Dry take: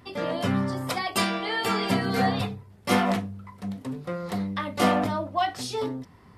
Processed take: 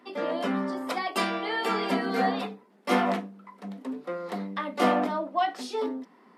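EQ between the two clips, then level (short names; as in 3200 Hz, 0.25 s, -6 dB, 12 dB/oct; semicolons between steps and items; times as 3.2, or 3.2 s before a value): steep high-pass 210 Hz 48 dB/oct; high shelf 3900 Hz -10 dB; 0.0 dB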